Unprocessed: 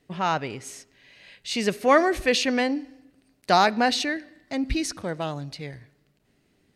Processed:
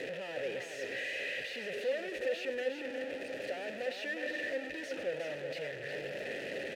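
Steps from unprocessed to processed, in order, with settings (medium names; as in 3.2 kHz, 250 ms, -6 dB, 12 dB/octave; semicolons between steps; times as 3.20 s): one-bit comparator; vowel filter e; delay 360 ms -7 dB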